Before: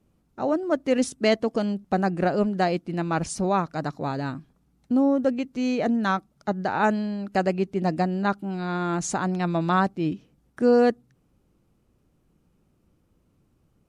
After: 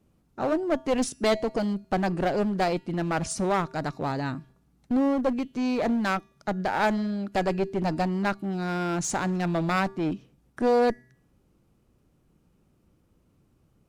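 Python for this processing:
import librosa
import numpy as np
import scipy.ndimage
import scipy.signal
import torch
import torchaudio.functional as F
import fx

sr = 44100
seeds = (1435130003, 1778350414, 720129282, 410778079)

y = fx.comb_fb(x, sr, f0_hz=130.0, decay_s=0.63, harmonics='odd', damping=0.0, mix_pct=40)
y = fx.clip_asym(y, sr, top_db=-30.0, bottom_db=-18.0)
y = y * librosa.db_to_amplitude(5.0)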